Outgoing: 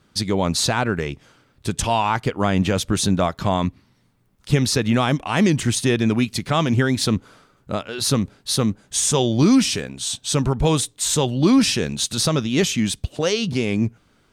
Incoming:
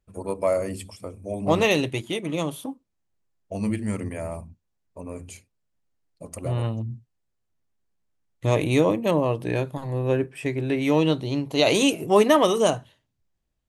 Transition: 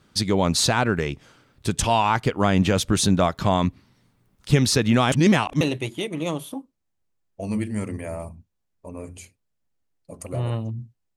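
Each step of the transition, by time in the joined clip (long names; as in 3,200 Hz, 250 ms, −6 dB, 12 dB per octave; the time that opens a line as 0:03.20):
outgoing
0:05.12–0:05.61: reverse
0:05.61: continue with incoming from 0:01.73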